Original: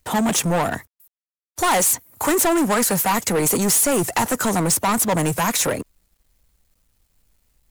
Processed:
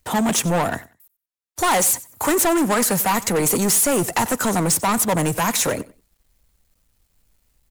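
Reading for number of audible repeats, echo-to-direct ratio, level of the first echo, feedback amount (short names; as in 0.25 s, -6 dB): 2, -19.5 dB, -19.5 dB, 21%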